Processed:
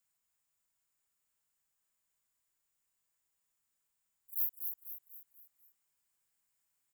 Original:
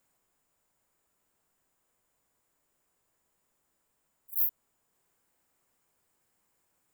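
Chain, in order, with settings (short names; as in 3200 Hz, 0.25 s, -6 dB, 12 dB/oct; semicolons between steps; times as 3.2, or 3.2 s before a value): passive tone stack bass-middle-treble 5-5-5; frequency-shifting echo 0.246 s, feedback 45%, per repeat -32 Hz, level -6 dB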